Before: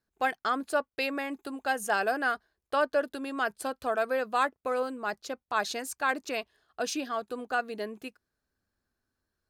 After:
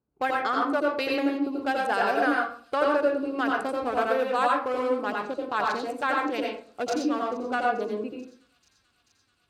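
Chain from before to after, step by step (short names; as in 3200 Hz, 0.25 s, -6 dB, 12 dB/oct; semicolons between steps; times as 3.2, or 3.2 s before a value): Wiener smoothing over 25 samples; HPF 62 Hz; high shelf 9600 Hz -5.5 dB; notch 660 Hz, Q 12; compressor 1.5:1, threshold -36 dBFS, peak gain reduction 5.5 dB; thin delay 0.437 s, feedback 81%, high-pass 4700 Hz, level -19 dB; reverb RT60 0.50 s, pre-delay 80 ms, DRR -1.5 dB; gain +5.5 dB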